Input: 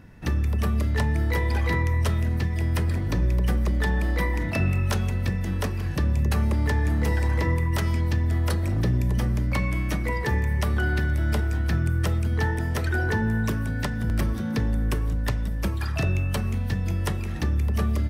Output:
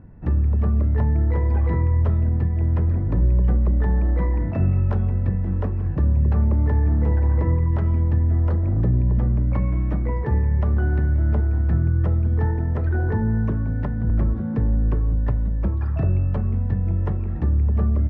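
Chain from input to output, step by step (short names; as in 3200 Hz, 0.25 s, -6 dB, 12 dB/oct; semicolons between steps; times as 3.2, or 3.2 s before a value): LPF 1000 Hz 12 dB/oct; low shelf 150 Hz +6 dB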